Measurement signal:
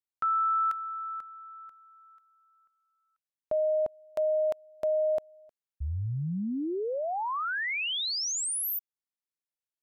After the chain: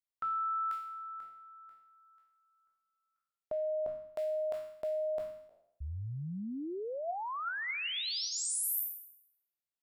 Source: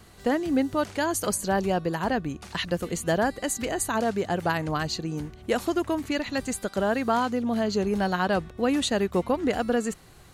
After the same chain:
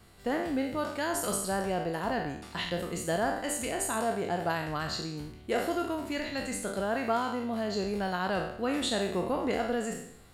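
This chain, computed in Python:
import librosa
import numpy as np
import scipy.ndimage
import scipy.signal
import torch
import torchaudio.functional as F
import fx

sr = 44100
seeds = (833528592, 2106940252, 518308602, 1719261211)

y = fx.spec_trails(x, sr, decay_s=0.73)
y = fx.notch(y, sr, hz=6200.0, q=7.7)
y = fx.comb_fb(y, sr, f0_hz=690.0, decay_s=0.18, harmonics='all', damping=0.0, mix_pct=60)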